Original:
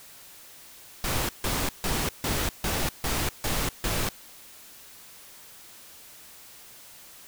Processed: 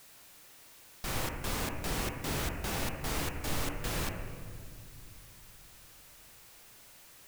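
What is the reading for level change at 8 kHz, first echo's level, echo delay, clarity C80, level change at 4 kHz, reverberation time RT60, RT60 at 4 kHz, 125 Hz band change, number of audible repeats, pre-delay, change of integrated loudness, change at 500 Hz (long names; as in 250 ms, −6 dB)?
−7.5 dB, no echo audible, no echo audible, 6.5 dB, −7.5 dB, 2.1 s, 1.6 s, −4.0 dB, no echo audible, 25 ms, −6.5 dB, −5.0 dB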